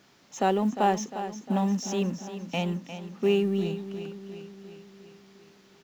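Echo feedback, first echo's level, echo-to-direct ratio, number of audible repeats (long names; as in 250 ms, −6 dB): 58%, −11.0 dB, −9.0 dB, 6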